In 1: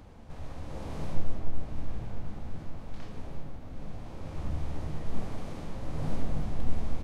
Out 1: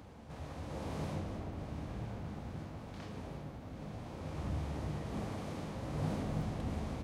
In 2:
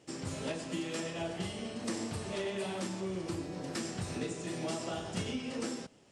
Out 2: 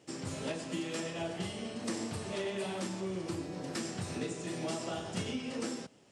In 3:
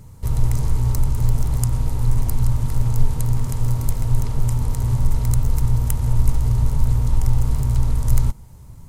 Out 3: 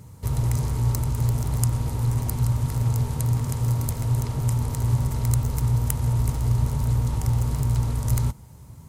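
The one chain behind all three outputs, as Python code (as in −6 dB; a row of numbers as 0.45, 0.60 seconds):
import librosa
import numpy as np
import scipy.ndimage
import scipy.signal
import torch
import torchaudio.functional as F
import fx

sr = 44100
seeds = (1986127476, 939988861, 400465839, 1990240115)

y = scipy.signal.sosfilt(scipy.signal.butter(2, 77.0, 'highpass', fs=sr, output='sos'), x)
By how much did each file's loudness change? −1.5, 0.0, −2.5 LU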